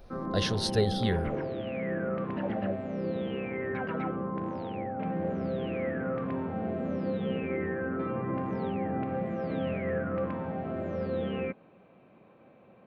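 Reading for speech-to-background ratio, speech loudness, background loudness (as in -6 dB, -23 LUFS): 3.0 dB, -30.0 LUFS, -33.0 LUFS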